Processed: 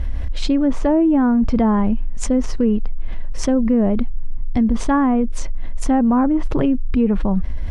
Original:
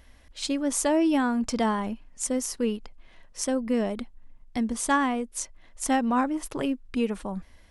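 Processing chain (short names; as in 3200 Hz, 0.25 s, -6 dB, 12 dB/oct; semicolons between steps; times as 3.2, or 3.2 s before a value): treble ducked by the level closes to 1500 Hz, closed at -20.5 dBFS; RIAA curve playback; fast leveller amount 70%; gain +2 dB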